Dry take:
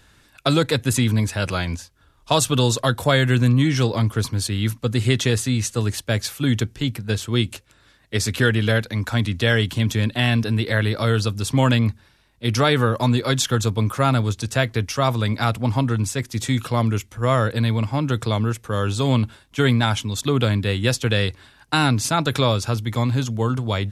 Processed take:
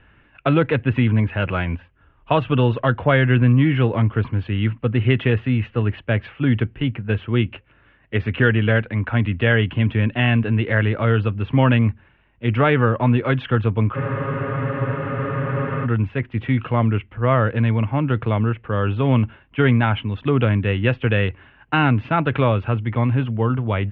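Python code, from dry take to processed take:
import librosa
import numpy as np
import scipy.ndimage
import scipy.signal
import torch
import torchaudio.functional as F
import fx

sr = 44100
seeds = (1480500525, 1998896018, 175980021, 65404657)

y = scipy.signal.sosfilt(scipy.signal.cheby1(5, 1.0, 2900.0, 'lowpass', fs=sr, output='sos'), x)
y = fx.spec_freeze(y, sr, seeds[0], at_s=13.97, hold_s=1.88)
y = y * 10.0 ** (2.0 / 20.0)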